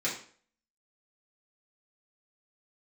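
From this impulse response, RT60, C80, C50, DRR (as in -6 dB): 0.50 s, 10.5 dB, 6.5 dB, -7.5 dB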